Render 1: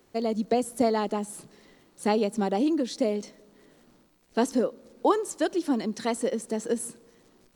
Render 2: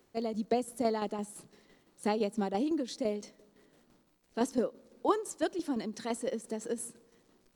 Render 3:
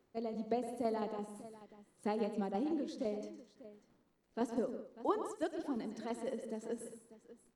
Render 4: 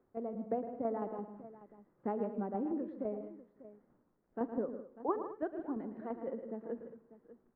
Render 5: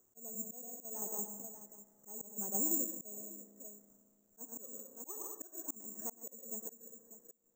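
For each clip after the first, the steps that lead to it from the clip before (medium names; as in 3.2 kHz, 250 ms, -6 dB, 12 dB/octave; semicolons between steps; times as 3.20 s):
tremolo saw down 5.9 Hz, depth 55%; trim -4 dB
treble shelf 2.9 kHz -9 dB; on a send: multi-tap echo 46/111/155/214/594 ms -19.5/-11/-12.5/-17.5/-16.5 dB; on the sum: trim -5.5 dB
low-pass 1.6 kHz 24 dB/octave
careless resampling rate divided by 6×, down none, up zero stuff; spring tank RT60 2.8 s, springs 34 ms, chirp 75 ms, DRR 16.5 dB; slow attack 401 ms; trim -5 dB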